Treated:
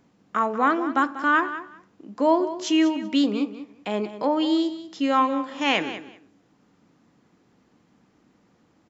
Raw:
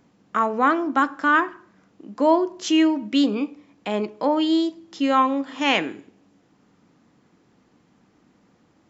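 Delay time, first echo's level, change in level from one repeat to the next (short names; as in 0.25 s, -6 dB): 0.191 s, -13.0 dB, -15.5 dB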